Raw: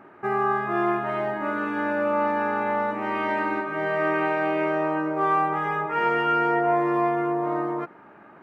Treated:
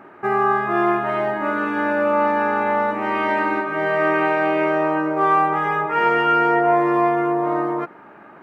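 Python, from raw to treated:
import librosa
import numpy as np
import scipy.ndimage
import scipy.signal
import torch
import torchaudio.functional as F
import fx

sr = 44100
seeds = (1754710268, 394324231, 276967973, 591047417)

y = fx.low_shelf(x, sr, hz=160.0, db=-4.5)
y = y * librosa.db_to_amplitude(5.5)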